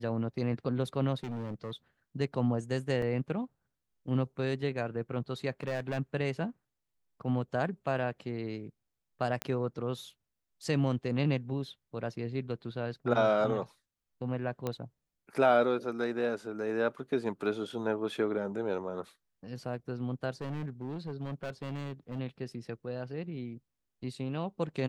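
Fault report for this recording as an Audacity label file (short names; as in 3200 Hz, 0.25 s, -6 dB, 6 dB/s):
1.230000	1.710000	clipped -34 dBFS
3.020000	3.020000	gap 2.9 ms
5.610000	5.990000	clipped -28 dBFS
9.420000	9.420000	pop -16 dBFS
14.670000	14.670000	pop -20 dBFS
20.410000	22.200000	clipped -33 dBFS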